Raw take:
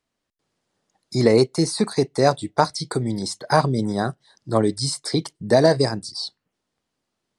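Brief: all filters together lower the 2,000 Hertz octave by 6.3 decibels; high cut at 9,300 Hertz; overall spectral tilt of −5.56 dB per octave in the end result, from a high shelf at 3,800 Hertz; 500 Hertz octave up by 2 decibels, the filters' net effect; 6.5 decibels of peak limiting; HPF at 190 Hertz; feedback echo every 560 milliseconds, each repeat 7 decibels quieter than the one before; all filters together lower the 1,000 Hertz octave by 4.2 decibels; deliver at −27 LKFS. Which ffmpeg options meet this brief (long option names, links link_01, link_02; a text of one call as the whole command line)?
ffmpeg -i in.wav -af "highpass=190,lowpass=9300,equalizer=frequency=500:width_type=o:gain=5,equalizer=frequency=1000:width_type=o:gain=-7.5,equalizer=frequency=2000:width_type=o:gain=-4,highshelf=frequency=3800:gain=-6.5,alimiter=limit=-8.5dB:level=0:latency=1,aecho=1:1:560|1120|1680|2240|2800:0.447|0.201|0.0905|0.0407|0.0183,volume=-4dB" out.wav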